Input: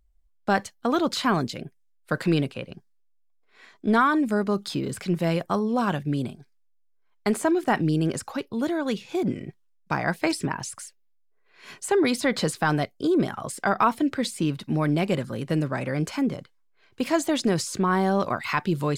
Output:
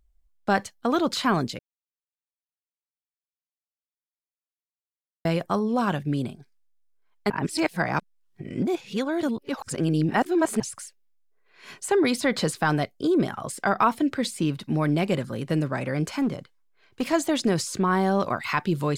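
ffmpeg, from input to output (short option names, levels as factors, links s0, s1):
-filter_complex "[0:a]asettb=1/sr,asplit=3[s0][s1][s2];[s0]atrim=end=16.074[s3];[s1]atrim=start=16.07:end=17.13,asetpts=PTS-STARTPTS,afade=t=in:d=0.004:c=qsin,afade=t=out:st=1.056:d=0.004:c=qsin,volume=8.91,asoftclip=hard,volume=0.112[s4];[s2]atrim=start=17.126[s5];[s3][s4]acrossfade=d=0.004:c1=hsin:c2=qsin[s6];[s6][s5]acrossfade=d=0.004:c1=qsin:c2=hsin,asplit=5[s7][s8][s9][s10][s11];[s7]atrim=end=1.59,asetpts=PTS-STARTPTS,afade=t=out:st=1.586:d=0.004:c=hsin[s12];[s8]atrim=start=1.59:end=5.25,asetpts=PTS-STARTPTS,volume=0[s13];[s9]atrim=start=5.25:end=7.302,asetpts=PTS-STARTPTS,afade=t=in:d=0.004:c=hsin[s14];[s10]atrim=start=7.298:end=10.602,asetpts=PTS-STARTPTS,areverse[s15];[s11]atrim=start=10.598[s16];[s12][s13][s14]concat=n=3:v=0:a=1[s17];[s17][s15]acrossfade=d=0.004:c1=hsin:c2=hsin[s18];[s18][s16]acrossfade=d=0.004:c1=hsin:c2=hsin"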